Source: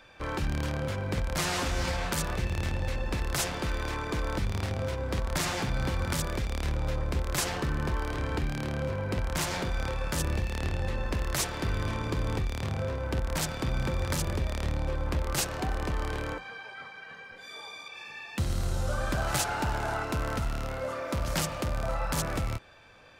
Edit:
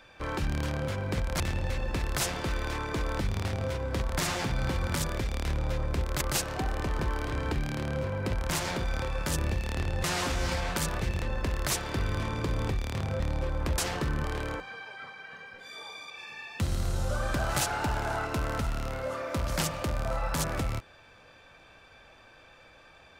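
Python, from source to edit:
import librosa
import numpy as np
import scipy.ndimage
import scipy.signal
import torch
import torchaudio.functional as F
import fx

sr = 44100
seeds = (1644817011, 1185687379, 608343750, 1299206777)

y = fx.edit(x, sr, fx.move(start_s=1.4, length_s=1.18, to_s=10.9),
    fx.swap(start_s=7.39, length_s=0.46, other_s=15.24, other_length_s=0.78),
    fx.cut(start_s=12.88, length_s=1.78), tone=tone)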